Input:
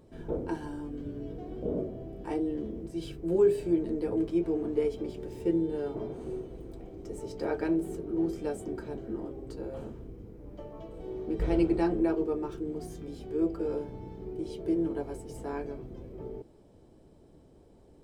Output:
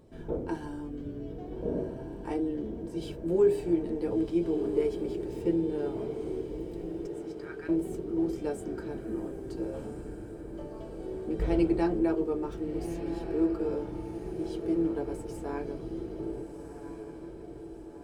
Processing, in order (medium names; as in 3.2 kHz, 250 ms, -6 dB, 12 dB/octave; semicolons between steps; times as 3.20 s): 7.07–7.69 s: ladder high-pass 1.2 kHz, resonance 45%; echo that smears into a reverb 1408 ms, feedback 53%, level -9 dB